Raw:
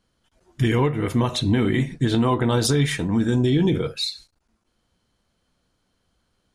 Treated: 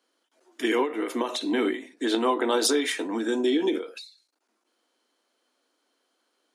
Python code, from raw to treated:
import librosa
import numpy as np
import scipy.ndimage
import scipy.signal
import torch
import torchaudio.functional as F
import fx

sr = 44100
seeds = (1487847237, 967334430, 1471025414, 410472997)

y = scipy.signal.sosfilt(scipy.signal.butter(8, 270.0, 'highpass', fs=sr, output='sos'), x)
y = fx.end_taper(y, sr, db_per_s=130.0)